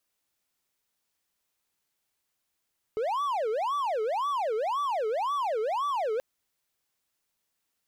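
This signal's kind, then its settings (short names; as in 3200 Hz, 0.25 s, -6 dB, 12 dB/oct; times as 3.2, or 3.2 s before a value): siren wail 427–1160 Hz 1.9/s triangle -24 dBFS 3.23 s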